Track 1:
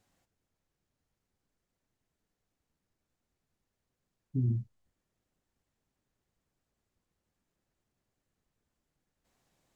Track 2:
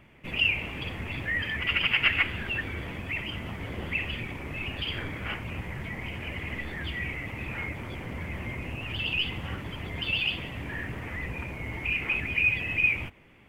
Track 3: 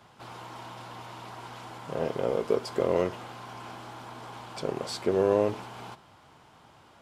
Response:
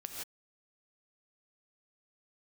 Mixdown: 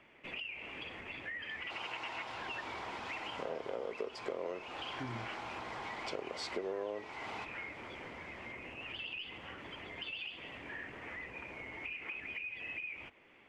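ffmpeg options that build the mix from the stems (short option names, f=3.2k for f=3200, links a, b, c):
-filter_complex "[0:a]adelay=650,volume=0dB[a];[1:a]alimiter=limit=-21dB:level=0:latency=1:release=492,acompressor=threshold=-36dB:ratio=6,volume=-3dB[b];[2:a]adelay=1500,volume=-0.5dB[c];[a][b][c]amix=inputs=3:normalize=0,acrossover=split=280 7400:gain=0.158 1 0.0891[d][e][f];[d][e][f]amix=inputs=3:normalize=0,acompressor=threshold=-37dB:ratio=5"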